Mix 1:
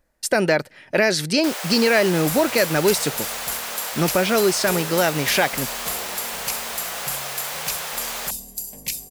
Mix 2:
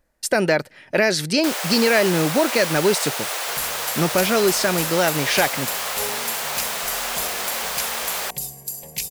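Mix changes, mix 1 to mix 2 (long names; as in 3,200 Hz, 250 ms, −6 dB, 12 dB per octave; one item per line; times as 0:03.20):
first sound +3.5 dB
second sound: entry +1.30 s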